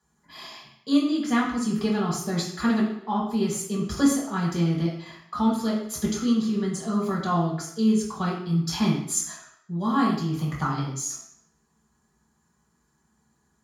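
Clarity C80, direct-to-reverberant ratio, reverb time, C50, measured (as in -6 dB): 6.5 dB, -6.0 dB, 0.70 s, 3.5 dB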